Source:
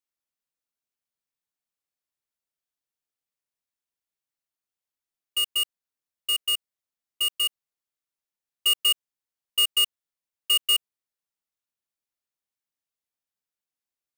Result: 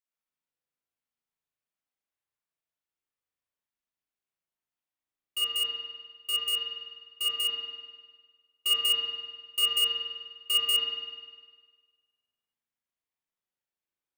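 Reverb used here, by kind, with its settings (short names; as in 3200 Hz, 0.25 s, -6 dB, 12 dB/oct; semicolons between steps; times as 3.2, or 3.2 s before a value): spring tank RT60 1.5 s, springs 37 ms, chirp 65 ms, DRR -6 dB; gain -7 dB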